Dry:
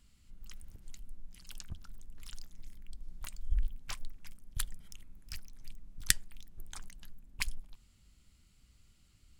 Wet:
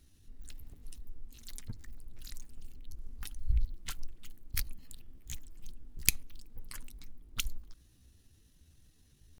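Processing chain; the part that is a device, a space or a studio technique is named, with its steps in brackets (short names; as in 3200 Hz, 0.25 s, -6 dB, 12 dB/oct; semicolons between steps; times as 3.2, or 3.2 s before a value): chipmunk voice (pitch shift +5 st); gain +1.5 dB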